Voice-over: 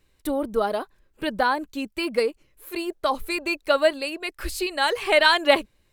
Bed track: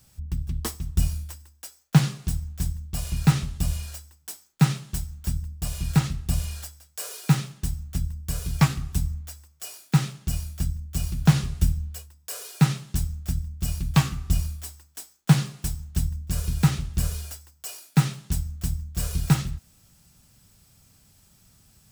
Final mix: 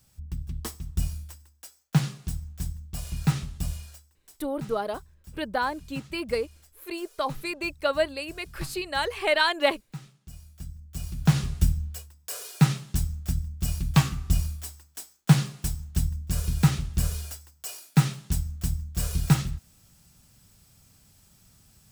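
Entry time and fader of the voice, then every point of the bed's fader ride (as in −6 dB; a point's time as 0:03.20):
4.15 s, −5.0 dB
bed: 0:03.67 −5 dB
0:04.51 −19.5 dB
0:10.20 −19.5 dB
0:11.46 −0.5 dB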